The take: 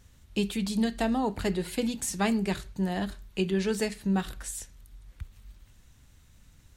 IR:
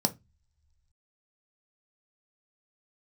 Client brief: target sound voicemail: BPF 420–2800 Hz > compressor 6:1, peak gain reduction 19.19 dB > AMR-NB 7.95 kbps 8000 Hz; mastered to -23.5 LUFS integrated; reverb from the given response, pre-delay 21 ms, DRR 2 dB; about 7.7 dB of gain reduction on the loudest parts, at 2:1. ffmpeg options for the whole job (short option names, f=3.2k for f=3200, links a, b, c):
-filter_complex "[0:a]acompressor=threshold=-37dB:ratio=2,asplit=2[a][b];[1:a]atrim=start_sample=2205,adelay=21[c];[b][c]afir=irnorm=-1:irlink=0,volume=-9.5dB[d];[a][d]amix=inputs=2:normalize=0,highpass=420,lowpass=2.8k,acompressor=threshold=-49dB:ratio=6,volume=29.5dB" -ar 8000 -c:a libopencore_amrnb -b:a 7950